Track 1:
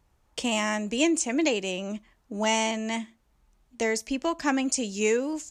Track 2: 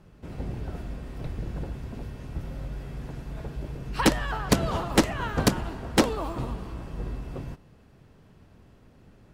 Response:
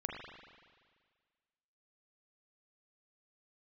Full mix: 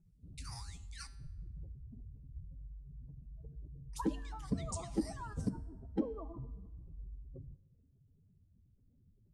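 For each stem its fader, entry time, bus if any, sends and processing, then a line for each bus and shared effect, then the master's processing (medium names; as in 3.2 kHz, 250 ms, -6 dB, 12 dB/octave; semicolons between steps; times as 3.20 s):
-2.5 dB, 0.00 s, muted 1.15–3.93 s, send -23 dB, rippled Chebyshev high-pass 2.8 kHz, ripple 9 dB; ring modulator with a swept carrier 1.1 kHz, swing 90%, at 1.8 Hz
-6.5 dB, 0.00 s, send -20 dB, spectral contrast enhancement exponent 2.7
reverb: on, RT60 1.7 s, pre-delay 38 ms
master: feedback comb 91 Hz, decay 0.77 s, harmonics odd, mix 60%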